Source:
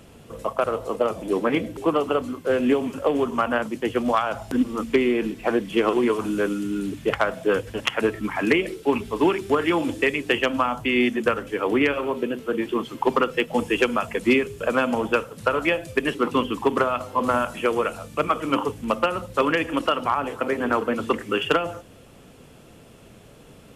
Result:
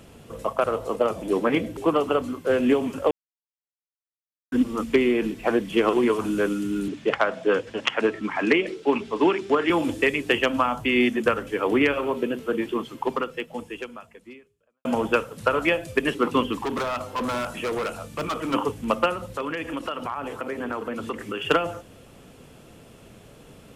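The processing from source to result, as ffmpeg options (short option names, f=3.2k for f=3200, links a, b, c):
-filter_complex "[0:a]asettb=1/sr,asplit=3[a][b][c];[a]atrim=end=6.884[d];[b]atrim=start=6.88:end=9.7,asetpts=PTS-STARTPTS,afade=t=in:d=0.004:c=qsin,afade=t=out:st=2.816:d=0.004:c=qsin,acrossover=split=160 7300:gain=0.158 1 0.0631[e][f][g];[e][f][g]amix=inputs=3:normalize=0[h];[c]atrim=start=9.696[i];[d][h]acrossfade=d=0.004:c1=hsin:c2=qsin[j];[j][i]acrossfade=d=0.004:c1=qsin:c2=hsin,asplit=3[k][l][m];[k]afade=t=out:st=16.52:d=0.02[n];[l]asoftclip=type=hard:threshold=-24dB,afade=t=in:st=16.52:d=0.02,afade=t=out:st=18.53:d=0.02[o];[m]afade=t=in:st=18.53:d=0.02[p];[n][o][p]amix=inputs=3:normalize=0,asettb=1/sr,asplit=3[q][r][s];[q]atrim=end=19.134[t];[r]atrim=start=19.13:end=21.45,asetpts=PTS-STARTPTS,afade=t=in:d=0.004:c=qsin,afade=t=out:st=2.316:d=0.004:c=qsin,acompressor=threshold=-29dB:ratio=2.5:attack=3.2:release=140:knee=1:detection=peak[u];[s]atrim=start=21.446[v];[t][u]acrossfade=d=0.004:c1=hsin:c2=qsin[w];[w][v]acrossfade=d=0.004:c1=qsin:c2=hsin,asplit=4[x][y][z][aa];[x]atrim=end=3.11,asetpts=PTS-STARTPTS,afade=t=out:st=3.106:d=0.004:c=hsin[ab];[y]atrim=start=3.11:end=4.52,asetpts=PTS-STARTPTS,volume=0[ac];[z]atrim=start=4.52:end=14.85,asetpts=PTS-STARTPTS,afade=t=in:d=0.004:c=hsin,afade=t=out:st=7.96:d=2.37:c=qua[ad];[aa]atrim=start=14.85,asetpts=PTS-STARTPTS,afade=t=in:d=0.004:c=hsin[ae];[ab][ac][ad][ae]concat=n=4:v=0:a=1"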